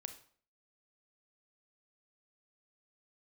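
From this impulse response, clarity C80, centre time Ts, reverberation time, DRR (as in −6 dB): 15.0 dB, 9 ms, 0.50 s, 8.0 dB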